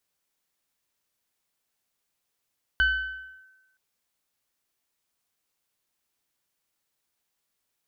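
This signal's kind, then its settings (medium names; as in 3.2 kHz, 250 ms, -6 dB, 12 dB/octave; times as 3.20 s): FM tone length 0.97 s, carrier 1.53 kHz, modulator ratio 0.96, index 0.56, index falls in 0.66 s linear, decay 1.10 s, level -16.5 dB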